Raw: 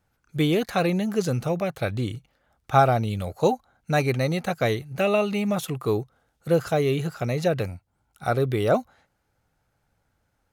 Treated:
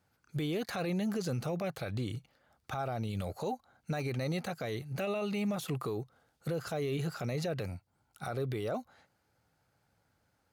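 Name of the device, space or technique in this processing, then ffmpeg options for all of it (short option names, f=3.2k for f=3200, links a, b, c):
broadcast voice chain: -af "highpass=82,deesser=0.6,acompressor=threshold=-27dB:ratio=4,equalizer=f=4.6k:t=o:w=0.24:g=5,alimiter=level_in=1dB:limit=-24dB:level=0:latency=1:release=18,volume=-1dB,volume=-1.5dB"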